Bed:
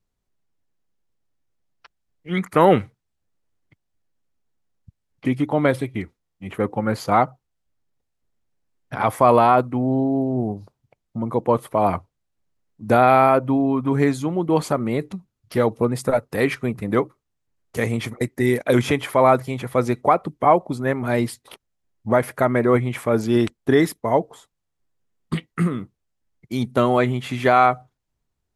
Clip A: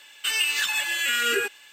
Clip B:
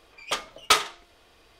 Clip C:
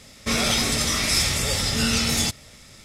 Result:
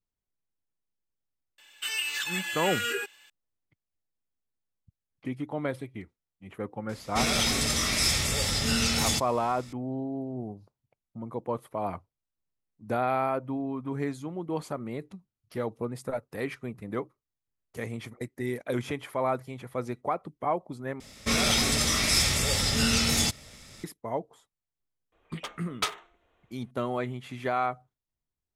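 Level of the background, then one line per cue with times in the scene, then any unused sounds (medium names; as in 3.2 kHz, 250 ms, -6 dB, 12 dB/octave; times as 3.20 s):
bed -13 dB
1.58 s: add A -7 dB
6.89 s: add C -4 dB
21.00 s: replace with C -2.5 dB
25.12 s: add B -10 dB + local Wiener filter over 9 samples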